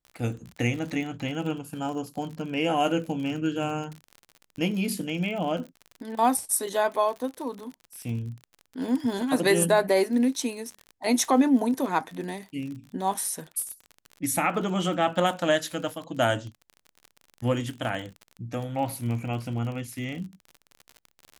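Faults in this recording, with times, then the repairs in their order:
surface crackle 45 per second −34 dBFS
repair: click removal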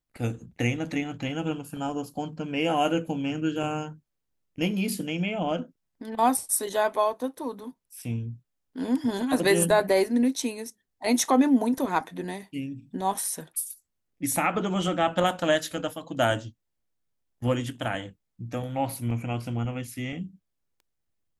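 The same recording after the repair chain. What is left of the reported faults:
none of them is left

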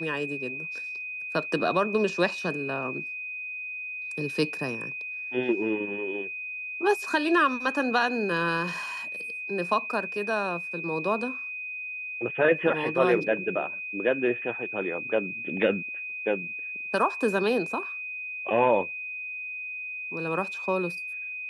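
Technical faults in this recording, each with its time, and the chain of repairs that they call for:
whistle 2,500 Hz −33 dBFS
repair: notch filter 2,500 Hz, Q 30

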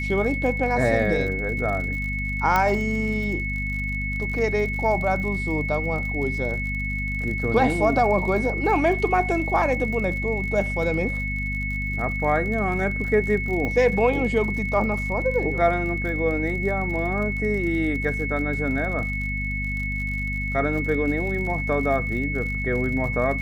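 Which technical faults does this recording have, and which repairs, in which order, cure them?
surface crackle 57 per second −32 dBFS
mains hum 50 Hz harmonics 5 −29 dBFS
whistle 2,200 Hz −28 dBFS
0:02.56: click −8 dBFS
0:13.65: click −16 dBFS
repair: click removal
hum removal 50 Hz, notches 5
notch filter 2,200 Hz, Q 30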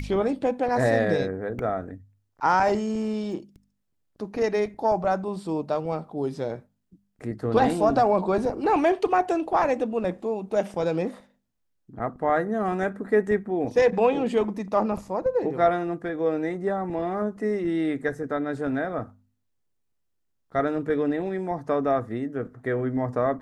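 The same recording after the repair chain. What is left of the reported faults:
none of them is left

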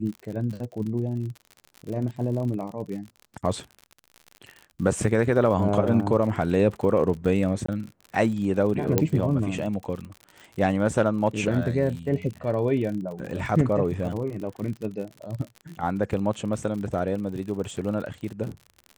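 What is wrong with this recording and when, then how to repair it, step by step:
surface crackle 55 per second −33 dBFS
0:07.66–0:07.68: drop-out 24 ms
0:08.98: click −6 dBFS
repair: click removal
repair the gap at 0:07.66, 24 ms

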